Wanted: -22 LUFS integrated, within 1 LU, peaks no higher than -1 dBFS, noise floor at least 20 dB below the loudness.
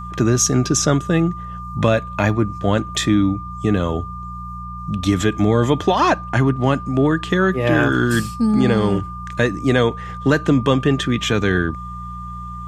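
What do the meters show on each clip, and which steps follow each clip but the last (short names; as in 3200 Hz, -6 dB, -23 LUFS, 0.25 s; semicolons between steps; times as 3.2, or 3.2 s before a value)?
hum 60 Hz; harmonics up to 180 Hz; hum level -32 dBFS; steady tone 1200 Hz; tone level -31 dBFS; loudness -18.5 LUFS; peak -2.5 dBFS; loudness target -22.0 LUFS
-> de-hum 60 Hz, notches 3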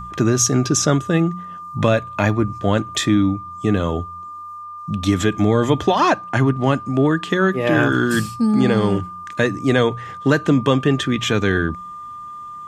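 hum none; steady tone 1200 Hz; tone level -31 dBFS
-> notch 1200 Hz, Q 30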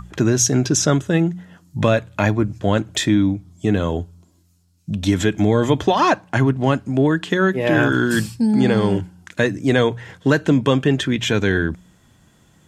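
steady tone none; loudness -18.5 LUFS; peak -2.0 dBFS; loudness target -22.0 LUFS
-> gain -3.5 dB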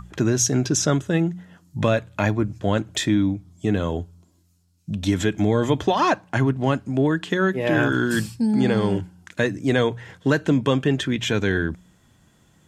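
loudness -22.0 LUFS; peak -5.5 dBFS; noise floor -60 dBFS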